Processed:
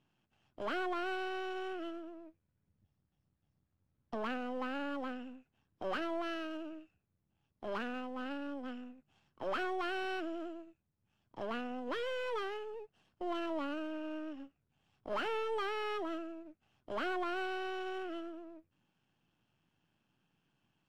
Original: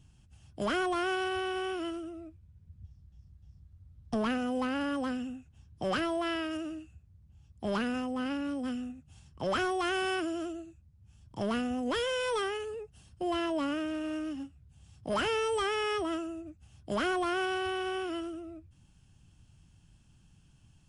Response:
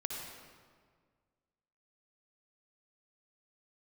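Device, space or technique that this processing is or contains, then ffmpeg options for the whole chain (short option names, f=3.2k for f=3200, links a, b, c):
crystal radio: -af "highpass=300,lowpass=2.7k,aeval=exprs='if(lt(val(0),0),0.447*val(0),val(0))':c=same,volume=-2.5dB"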